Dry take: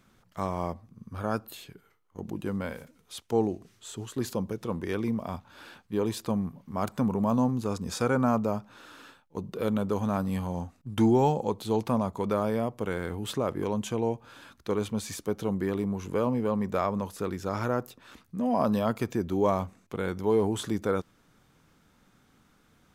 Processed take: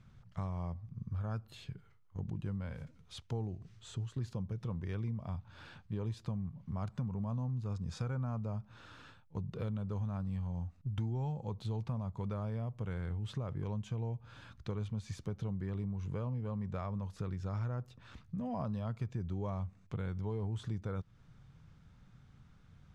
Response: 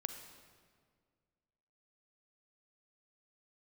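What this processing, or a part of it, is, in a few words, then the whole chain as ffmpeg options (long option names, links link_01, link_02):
jukebox: -af "lowpass=5700,lowshelf=frequency=190:width_type=q:width=1.5:gain=13,acompressor=threshold=-31dB:ratio=4,volume=-5.5dB"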